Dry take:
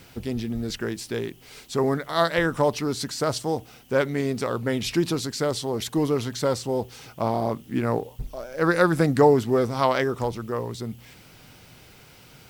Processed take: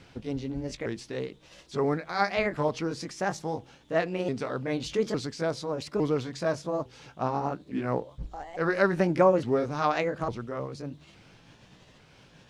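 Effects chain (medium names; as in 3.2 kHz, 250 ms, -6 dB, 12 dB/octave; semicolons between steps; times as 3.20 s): sawtooth pitch modulation +5 st, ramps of 857 ms; distance through air 93 m; trim -3 dB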